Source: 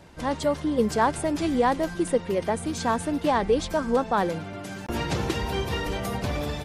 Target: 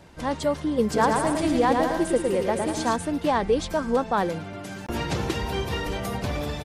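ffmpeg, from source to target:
-filter_complex "[0:a]asplit=3[s0][s1][s2];[s0]afade=t=out:st=0.93:d=0.02[s3];[s1]aecho=1:1:110|192.5|254.4|300.8|335.6:0.631|0.398|0.251|0.158|0.1,afade=t=in:st=0.93:d=0.02,afade=t=out:st=2.95:d=0.02[s4];[s2]afade=t=in:st=2.95:d=0.02[s5];[s3][s4][s5]amix=inputs=3:normalize=0"

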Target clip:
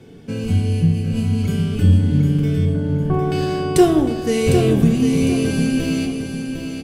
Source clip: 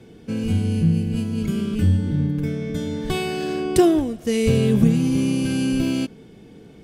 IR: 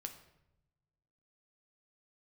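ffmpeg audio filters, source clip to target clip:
-filter_complex "[0:a]asettb=1/sr,asplit=3[s0][s1][s2];[s0]atrim=end=2.654[s3];[s1]atrim=start=2.65:end=3.32,asetpts=PTS-STARTPTS,afade=t=in:d=0.004:c=qsin,afade=t=out:st=0.666:d=0.004:c=qsin,lowpass=f=1400:w=0.5412,lowpass=f=1400:w=1.3066[s4];[s2]atrim=start=3.316[s5];[s3][s4]acrossfade=d=0.004:c1=hsin:c2=qsin[s6];[s6][s5]acrossfade=d=0.004:c1=qsin:c2=hsin,aecho=1:1:754|1508|2262|3016:0.447|0.147|0.0486|0.0161[s7];[1:a]atrim=start_sample=2205[s8];[s7][s8]afir=irnorm=-1:irlink=0,volume=2"

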